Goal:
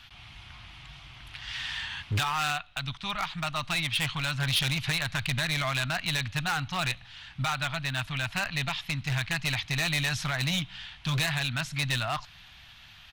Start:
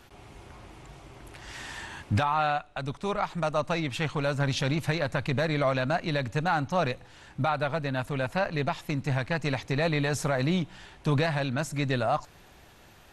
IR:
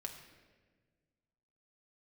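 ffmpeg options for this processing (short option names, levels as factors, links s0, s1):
-af "firequalizer=gain_entry='entry(120,0);entry(460,-25);entry(660,-8);entry(1200,0);entry(3200,10);entry(7400,-13)':delay=0.05:min_phase=1,asoftclip=type=hard:threshold=0.0631,highshelf=f=5700:g=9.5"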